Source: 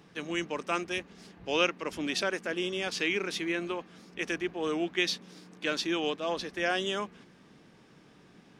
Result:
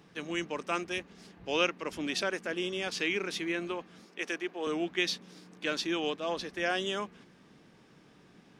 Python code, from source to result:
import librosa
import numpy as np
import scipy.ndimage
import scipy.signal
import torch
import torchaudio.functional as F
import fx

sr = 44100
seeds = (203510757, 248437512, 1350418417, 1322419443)

y = fx.highpass(x, sr, hz=310.0, slope=12, at=(4.06, 4.67))
y = y * librosa.db_to_amplitude(-1.5)